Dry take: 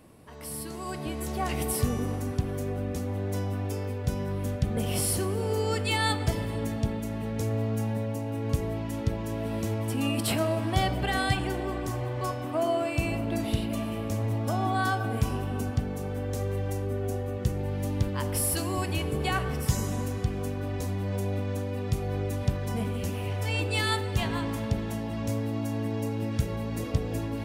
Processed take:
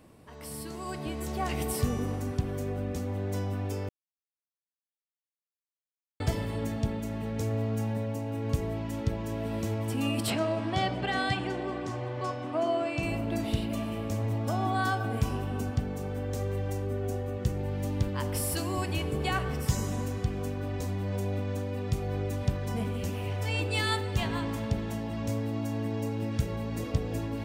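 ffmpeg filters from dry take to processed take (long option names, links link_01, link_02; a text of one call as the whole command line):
ffmpeg -i in.wav -filter_complex "[0:a]asettb=1/sr,asplit=3[link_01][link_02][link_03];[link_01]atrim=end=10.304[link_04];[link_02]atrim=start=10.3:end=13.03,asetpts=PTS-STARTPTS,afade=type=in:duration=0.004:curve=qsin,afade=type=out:start_time=2.726:duration=0.004:curve=qsin,highpass=120,lowpass=6100[link_05];[link_03]atrim=start=13.026[link_06];[link_04][link_05]acrossfade=duration=0.004:curve1=hsin:curve2=qsin[link_07];[link_07][link_06]acrossfade=duration=0.004:curve1=qsin:curve2=hsin,asplit=3[link_08][link_09][link_10];[link_08]atrim=end=3.89,asetpts=PTS-STARTPTS,afade=type=out:start_time=3.886:duration=0.004:curve=hsin[link_11];[link_09]atrim=start=3.89:end=6.2,asetpts=PTS-STARTPTS,volume=0[link_12];[link_10]atrim=start=6.2,asetpts=PTS-STARTPTS,afade=type=in:duration=0.004:curve=hsin[link_13];[link_11][link_12][link_13]concat=n=3:v=0:a=1,equalizer=frequency=11000:width=4:gain=-8.5,volume=-1.5dB" out.wav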